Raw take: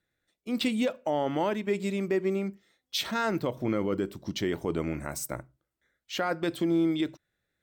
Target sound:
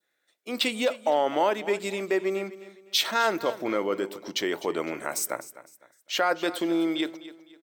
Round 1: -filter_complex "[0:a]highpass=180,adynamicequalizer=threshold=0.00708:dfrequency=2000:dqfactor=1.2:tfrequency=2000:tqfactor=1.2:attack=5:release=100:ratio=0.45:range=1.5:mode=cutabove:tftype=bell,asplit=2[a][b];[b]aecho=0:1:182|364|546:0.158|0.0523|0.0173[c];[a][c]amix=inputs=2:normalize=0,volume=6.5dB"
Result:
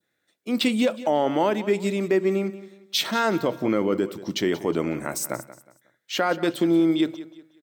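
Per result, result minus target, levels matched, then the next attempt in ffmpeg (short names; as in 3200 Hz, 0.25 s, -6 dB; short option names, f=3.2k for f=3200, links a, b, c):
echo 72 ms early; 250 Hz band +4.5 dB
-filter_complex "[0:a]highpass=180,adynamicequalizer=threshold=0.00708:dfrequency=2000:dqfactor=1.2:tfrequency=2000:tqfactor=1.2:attack=5:release=100:ratio=0.45:range=1.5:mode=cutabove:tftype=bell,asplit=2[a][b];[b]aecho=0:1:254|508|762:0.158|0.0523|0.0173[c];[a][c]amix=inputs=2:normalize=0,volume=6.5dB"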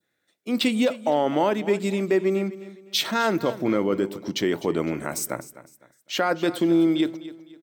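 250 Hz band +4.5 dB
-filter_complex "[0:a]highpass=460,adynamicequalizer=threshold=0.00708:dfrequency=2000:dqfactor=1.2:tfrequency=2000:tqfactor=1.2:attack=5:release=100:ratio=0.45:range=1.5:mode=cutabove:tftype=bell,asplit=2[a][b];[b]aecho=0:1:254|508|762:0.158|0.0523|0.0173[c];[a][c]amix=inputs=2:normalize=0,volume=6.5dB"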